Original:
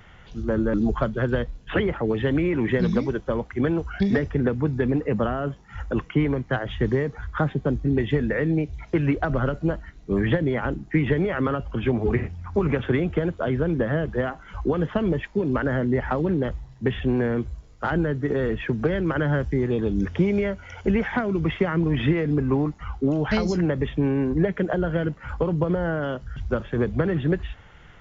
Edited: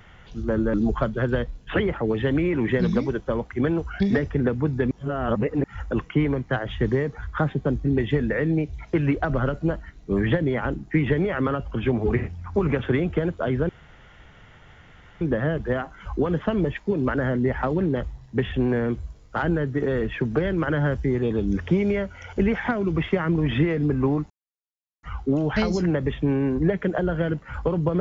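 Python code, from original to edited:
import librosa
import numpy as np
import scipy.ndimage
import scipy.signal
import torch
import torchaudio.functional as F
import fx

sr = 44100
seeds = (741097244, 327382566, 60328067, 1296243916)

y = fx.edit(x, sr, fx.reverse_span(start_s=4.91, length_s=0.73),
    fx.insert_room_tone(at_s=13.69, length_s=1.52),
    fx.insert_silence(at_s=22.78, length_s=0.73), tone=tone)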